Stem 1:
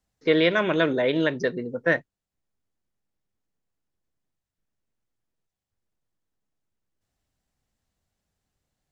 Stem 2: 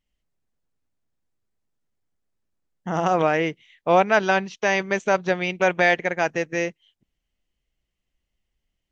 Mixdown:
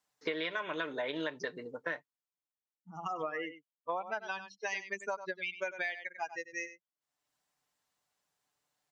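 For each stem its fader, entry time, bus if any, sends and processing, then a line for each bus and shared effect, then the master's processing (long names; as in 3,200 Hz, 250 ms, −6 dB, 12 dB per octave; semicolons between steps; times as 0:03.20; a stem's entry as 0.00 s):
+0.5 dB, 0.00 s, no send, no echo send, comb filter 6.8 ms, depth 43%; automatic ducking −18 dB, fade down 1.50 s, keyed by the second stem
−3.5 dB, 0.00 s, no send, echo send −14 dB, spectral dynamics exaggerated over time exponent 3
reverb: not used
echo: single-tap delay 96 ms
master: high-pass filter 790 Hz 6 dB per octave; parametric band 1,000 Hz +5.5 dB 0.61 octaves; downward compressor 16 to 1, threshold −32 dBFS, peak gain reduction 16 dB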